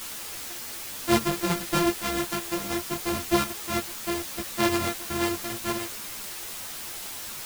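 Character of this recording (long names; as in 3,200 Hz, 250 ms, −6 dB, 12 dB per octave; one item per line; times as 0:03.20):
a buzz of ramps at a fixed pitch in blocks of 128 samples
chopped level 2 Hz, depth 65%, duty 85%
a quantiser's noise floor 6 bits, dither triangular
a shimmering, thickened sound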